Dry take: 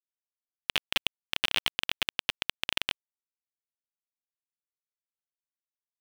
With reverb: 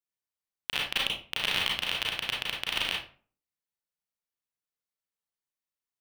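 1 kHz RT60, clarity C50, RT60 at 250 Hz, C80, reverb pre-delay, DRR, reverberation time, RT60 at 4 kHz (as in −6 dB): 0.40 s, 3.0 dB, 0.50 s, 9.5 dB, 31 ms, −3.0 dB, 0.40 s, 0.30 s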